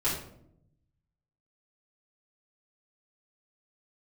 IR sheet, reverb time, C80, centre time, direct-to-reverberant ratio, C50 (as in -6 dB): 0.70 s, 7.5 dB, 40 ms, -10.5 dB, 4.0 dB